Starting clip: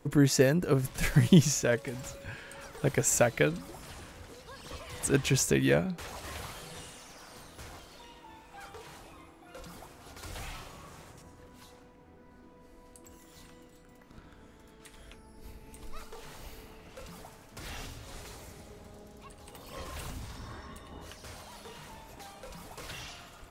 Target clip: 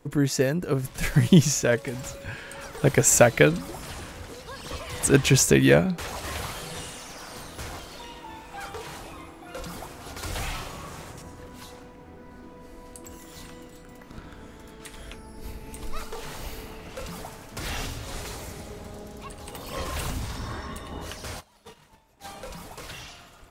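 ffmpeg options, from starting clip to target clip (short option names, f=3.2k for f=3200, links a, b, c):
-filter_complex "[0:a]asplit=3[a][b][c];[a]afade=t=out:st=21.39:d=0.02[d];[b]agate=range=-22dB:threshold=-44dB:ratio=16:detection=peak,afade=t=in:st=21.39:d=0.02,afade=t=out:st=22.23:d=0.02[e];[c]afade=t=in:st=22.23:d=0.02[f];[d][e][f]amix=inputs=3:normalize=0,dynaudnorm=f=220:g=11:m=10dB"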